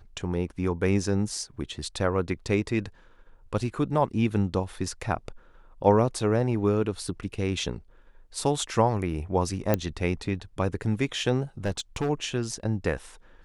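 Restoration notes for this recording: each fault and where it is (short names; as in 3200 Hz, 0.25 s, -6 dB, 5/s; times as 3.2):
9.74 pop -9 dBFS
11.65–12.1 clipped -22.5 dBFS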